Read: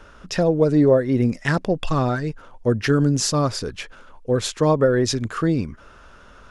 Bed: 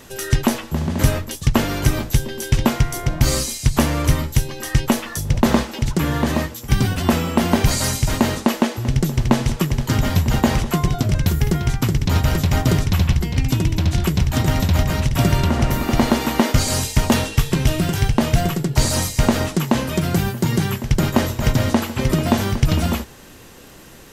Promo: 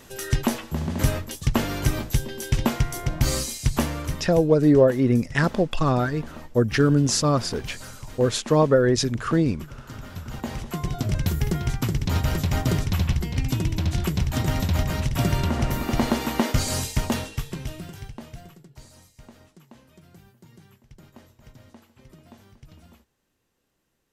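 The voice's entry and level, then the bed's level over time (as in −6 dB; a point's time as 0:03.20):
3.90 s, −0.5 dB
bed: 0:03.74 −5.5 dB
0:04.54 −21 dB
0:10.05 −21 dB
0:11.09 −6 dB
0:16.88 −6 dB
0:18.96 −32 dB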